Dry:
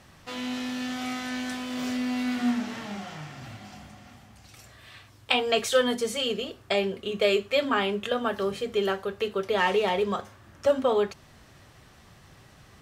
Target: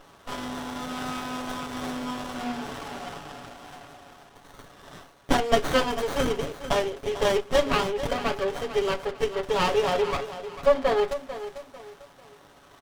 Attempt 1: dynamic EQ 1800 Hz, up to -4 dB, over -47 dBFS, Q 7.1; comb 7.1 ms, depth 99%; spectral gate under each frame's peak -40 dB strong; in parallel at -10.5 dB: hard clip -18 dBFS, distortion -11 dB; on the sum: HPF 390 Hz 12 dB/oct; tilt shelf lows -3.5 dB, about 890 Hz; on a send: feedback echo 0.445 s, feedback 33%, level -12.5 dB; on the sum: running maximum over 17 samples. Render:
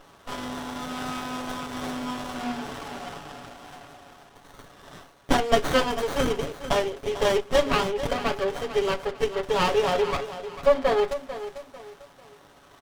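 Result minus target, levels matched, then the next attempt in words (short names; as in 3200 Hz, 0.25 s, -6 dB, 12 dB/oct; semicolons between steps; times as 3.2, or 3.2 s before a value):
hard clip: distortion -6 dB
dynamic EQ 1800 Hz, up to -4 dB, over -47 dBFS, Q 7.1; comb 7.1 ms, depth 99%; spectral gate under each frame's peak -40 dB strong; in parallel at -10.5 dB: hard clip -25.5 dBFS, distortion -5 dB; on the sum: HPF 390 Hz 12 dB/oct; tilt shelf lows -3.5 dB, about 890 Hz; on a send: feedback echo 0.445 s, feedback 33%, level -12.5 dB; on the sum: running maximum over 17 samples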